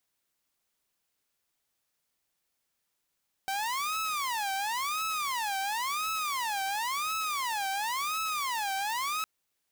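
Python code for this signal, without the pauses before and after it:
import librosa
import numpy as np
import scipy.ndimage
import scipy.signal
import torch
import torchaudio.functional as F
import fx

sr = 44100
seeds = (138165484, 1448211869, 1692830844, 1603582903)

y = fx.siren(sr, length_s=5.76, kind='wail', low_hz=774.0, high_hz=1300.0, per_s=0.95, wave='saw', level_db=-27.0)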